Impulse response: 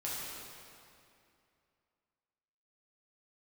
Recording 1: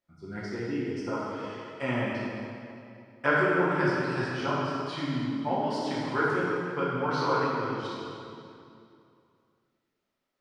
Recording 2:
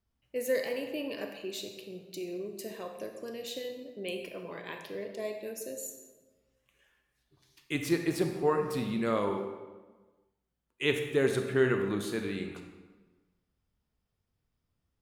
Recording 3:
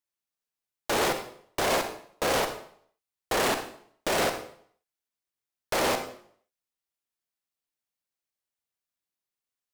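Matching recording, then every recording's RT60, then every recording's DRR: 1; 2.5, 1.3, 0.60 seconds; −7.5, 5.0, 7.0 decibels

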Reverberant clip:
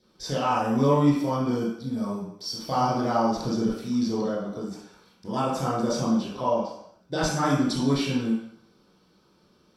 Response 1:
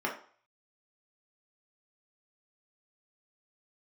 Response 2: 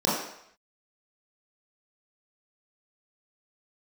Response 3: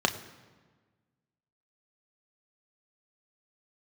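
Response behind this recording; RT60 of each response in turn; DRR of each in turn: 2; 0.45, 0.70, 1.4 seconds; −2.0, −8.5, 5.0 decibels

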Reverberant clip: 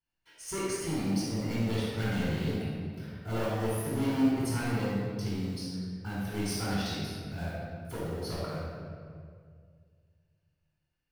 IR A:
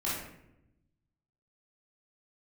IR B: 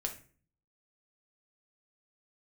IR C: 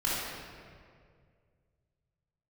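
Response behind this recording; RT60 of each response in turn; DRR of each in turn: C; 0.85, 0.40, 2.1 seconds; −9.0, 2.5, −8.5 decibels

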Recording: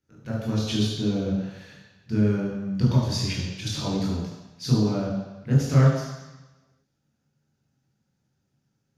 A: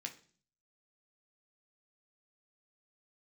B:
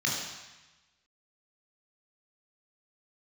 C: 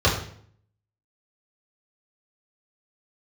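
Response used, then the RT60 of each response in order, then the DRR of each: B; 0.45, 1.1, 0.60 seconds; 2.5, −3.0, −8.5 decibels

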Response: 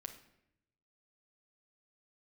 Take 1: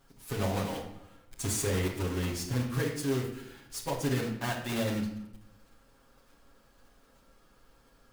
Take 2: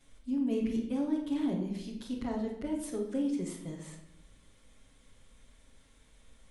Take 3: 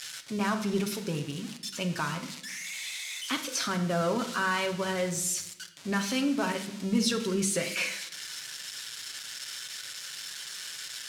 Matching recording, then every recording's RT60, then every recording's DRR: 3; 0.80, 0.80, 0.80 seconds; −3.0, −8.0, 3.5 decibels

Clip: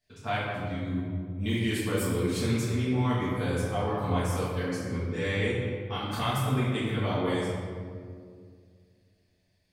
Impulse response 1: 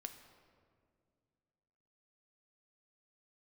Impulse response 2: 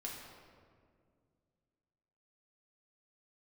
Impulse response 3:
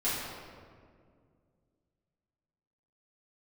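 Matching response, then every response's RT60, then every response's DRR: 3; 2.2, 2.1, 2.1 seconds; 6.5, −3.0, −11.5 decibels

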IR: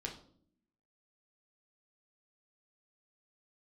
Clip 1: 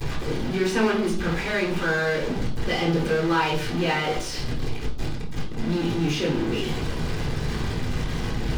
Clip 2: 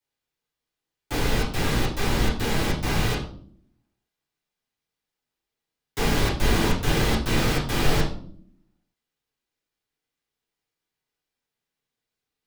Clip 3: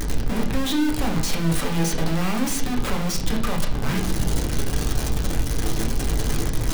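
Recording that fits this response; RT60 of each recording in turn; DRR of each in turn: 3; 0.60, 0.60, 0.60 seconds; −18.0, −8.5, −1.0 decibels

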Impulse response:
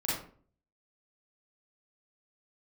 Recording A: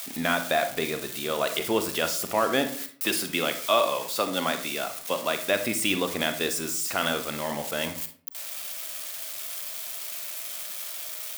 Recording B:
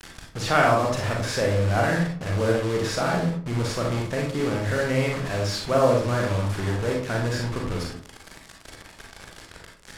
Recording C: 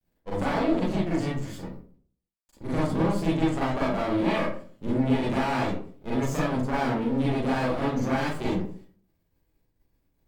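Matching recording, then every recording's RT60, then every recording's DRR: C; 0.50, 0.45, 0.45 seconds; 7.5, −1.0, −8.0 decibels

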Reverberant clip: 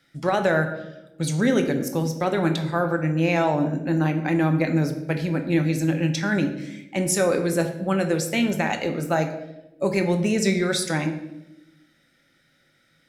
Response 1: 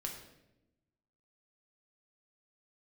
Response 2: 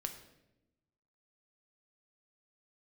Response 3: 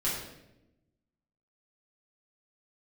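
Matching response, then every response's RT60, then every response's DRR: 2; 0.90, 0.90, 0.90 seconds; 0.5, 5.0, −9.0 decibels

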